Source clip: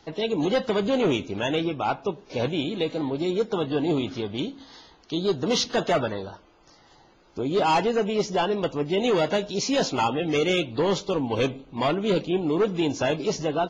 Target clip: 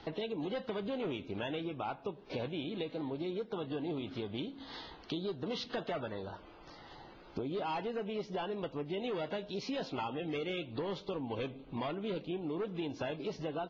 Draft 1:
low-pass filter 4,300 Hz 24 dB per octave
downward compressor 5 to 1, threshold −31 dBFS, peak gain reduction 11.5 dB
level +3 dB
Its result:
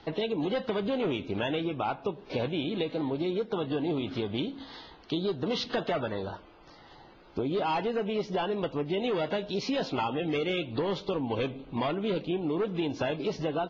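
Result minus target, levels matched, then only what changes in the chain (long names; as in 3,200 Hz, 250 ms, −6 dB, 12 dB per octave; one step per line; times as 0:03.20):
downward compressor: peak gain reduction −7.5 dB
change: downward compressor 5 to 1, threshold −40.5 dBFS, peak gain reduction 19 dB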